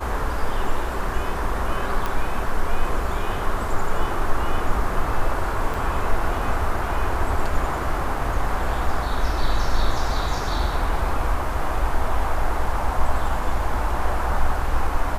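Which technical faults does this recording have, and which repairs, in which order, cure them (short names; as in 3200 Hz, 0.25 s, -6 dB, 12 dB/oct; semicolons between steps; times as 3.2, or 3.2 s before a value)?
2.06 pop
5.74 gap 3.9 ms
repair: de-click; interpolate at 5.74, 3.9 ms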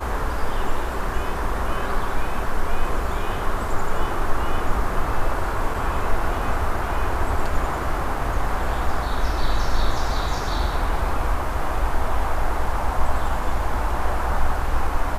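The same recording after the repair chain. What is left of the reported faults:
none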